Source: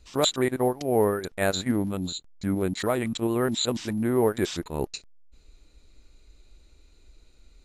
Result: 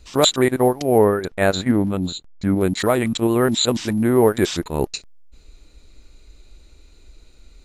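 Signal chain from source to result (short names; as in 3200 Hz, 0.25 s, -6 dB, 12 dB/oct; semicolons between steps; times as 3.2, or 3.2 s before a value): 0.98–2.61 high shelf 4600 Hz -9 dB; gain +7.5 dB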